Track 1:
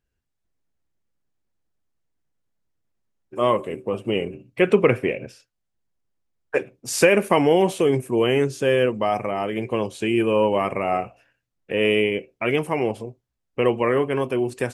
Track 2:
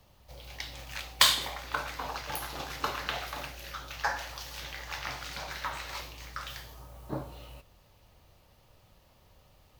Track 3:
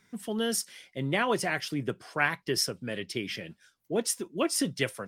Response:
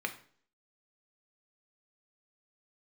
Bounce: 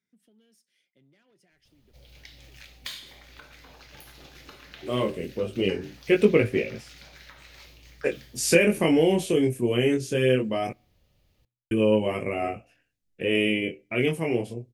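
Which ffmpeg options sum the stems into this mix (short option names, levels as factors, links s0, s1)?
-filter_complex "[0:a]flanger=delay=18.5:depth=6.6:speed=0.19,adelay=1500,volume=1.41,asplit=3[s0][s1][s2];[s0]atrim=end=10.73,asetpts=PTS-STARTPTS,afade=t=out:st=10.726:d=0.004:c=hsin[s3];[s1]atrim=start=10.73:end=11.71,asetpts=PTS-STARTPTS,volume=0[s4];[s2]atrim=start=11.71,asetpts=PTS-STARTPTS,afade=t=in:d=0.004:c=hsin[s5];[s3][s4][s5]concat=n=3:v=0:a=1,asplit=2[s6][s7];[s7]volume=0.0668[s8];[1:a]adelay=1650,volume=0.596,asplit=2[s9][s10];[s10]volume=0.188[s11];[2:a]asoftclip=type=tanh:threshold=0.0531,highpass=130,acompressor=threshold=0.0112:ratio=12,volume=0.106,asplit=2[s12][s13];[s13]volume=0.126[s14];[s9][s12]amix=inputs=2:normalize=0,highshelf=f=5500:g=-6.5,acompressor=threshold=0.00631:ratio=2.5,volume=1[s15];[3:a]atrim=start_sample=2205[s16];[s8][s11][s14]amix=inputs=3:normalize=0[s17];[s17][s16]afir=irnorm=-1:irlink=0[s18];[s6][s15][s18]amix=inputs=3:normalize=0,equalizer=f=1000:t=o:w=1.4:g=-13.5"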